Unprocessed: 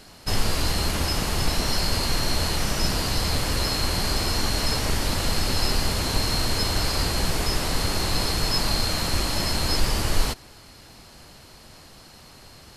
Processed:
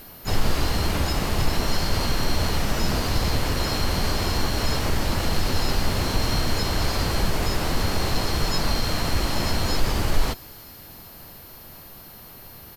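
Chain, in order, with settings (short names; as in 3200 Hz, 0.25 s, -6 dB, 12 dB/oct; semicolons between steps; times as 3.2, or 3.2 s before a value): high shelf 3700 Hz -8.5 dB; in parallel at -1.5 dB: limiter -16.5 dBFS, peak gain reduction 8 dB; on the sum: thin delay 0.314 s, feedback 75%, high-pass 4100 Hz, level -21 dB; whine 13000 Hz -41 dBFS; harmoniser -5 st -11 dB, +5 st -10 dB; gain -3.5 dB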